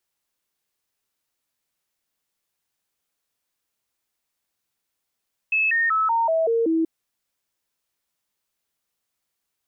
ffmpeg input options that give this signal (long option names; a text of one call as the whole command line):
ffmpeg -f lavfi -i "aevalsrc='0.133*clip(min(mod(t,0.19),0.19-mod(t,0.19))/0.005,0,1)*sin(2*PI*2600*pow(2,-floor(t/0.19)/2)*mod(t,0.19))':duration=1.33:sample_rate=44100" out.wav